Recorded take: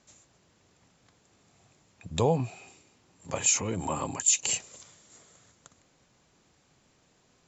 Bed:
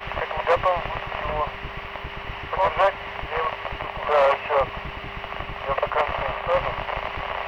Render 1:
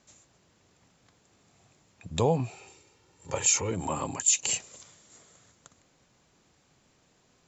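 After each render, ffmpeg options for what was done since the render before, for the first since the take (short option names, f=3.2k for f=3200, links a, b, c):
-filter_complex "[0:a]asettb=1/sr,asplit=3[a][b][c];[a]atrim=end=2.504[d];[b]atrim=start=2.5:end=3.71,asetpts=PTS-STARTPTS,afade=t=in:d=0.004:c=qsin,afade=t=out:st=1.206:d=0.004:c=qsin,aecho=1:1:2.2:0.56,atrim=end_sample=53361[e];[c]atrim=start=3.706[f];[d][e]acrossfade=d=0.004:c1=hsin:c2=qsin[g];[g][f]acrossfade=d=0.004:c1=qsin:c2=hsin"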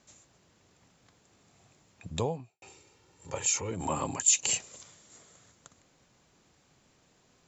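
-filter_complex "[0:a]asplit=4[a][b][c][d];[a]atrim=end=2.62,asetpts=PTS-STARTPTS,afade=t=out:st=2.09:d=0.53:c=qua[e];[b]atrim=start=2.62:end=3.292,asetpts=PTS-STARTPTS,afade=t=in:d=0.004:c=hsin[f];[c]atrim=start=3.288:end=3.802,asetpts=PTS-STARTPTS,volume=-4.5dB[g];[d]atrim=start=3.798[h];[e][f]concat=n=2:v=0:a=1[i];[i][g]acrossfade=d=0.004:c1=hsin:c2=hsin[j];[j][h]acrossfade=d=0.004:c1=hsin:c2=hsin"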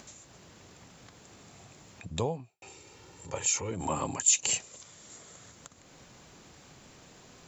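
-af "acompressor=mode=upward:threshold=-42dB:ratio=2.5"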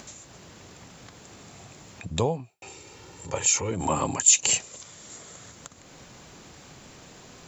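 -af "volume=6dB"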